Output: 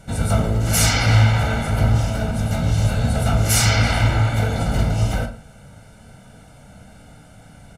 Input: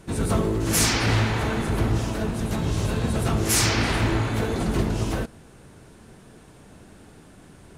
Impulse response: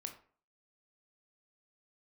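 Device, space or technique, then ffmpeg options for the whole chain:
microphone above a desk: -filter_complex "[0:a]aecho=1:1:1.4:0.82[s0];[1:a]atrim=start_sample=2205[s1];[s0][s1]afir=irnorm=-1:irlink=0,volume=1.68"

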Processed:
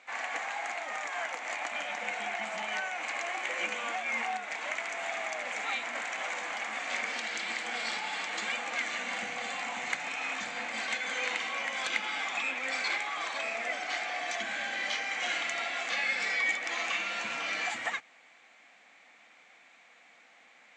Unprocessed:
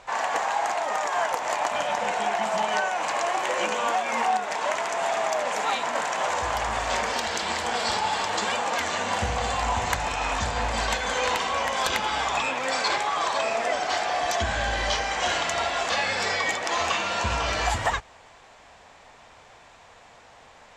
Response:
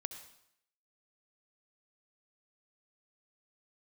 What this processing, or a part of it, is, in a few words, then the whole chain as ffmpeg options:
television speaker: -af "highpass=f=220:w=0.5412,highpass=f=220:w=1.3066,equalizer=f=410:t=q:w=4:g=-10,equalizer=f=600:t=q:w=4:g=-6,equalizer=f=960:t=q:w=4:g=-10,equalizer=f=2200:t=q:w=4:g=10,equalizer=f=5200:t=q:w=4:g=-5,lowpass=f=7900:w=0.5412,lowpass=f=7900:w=1.3066,volume=0.422"

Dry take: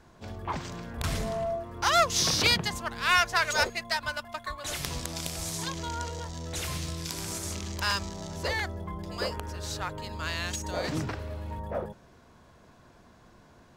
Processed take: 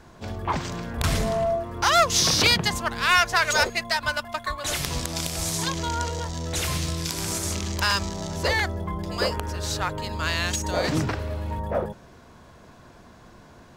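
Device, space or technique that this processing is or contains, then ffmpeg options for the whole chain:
clipper into limiter: -af "asoftclip=type=hard:threshold=0.211,alimiter=limit=0.15:level=0:latency=1:release=130,volume=2.24"

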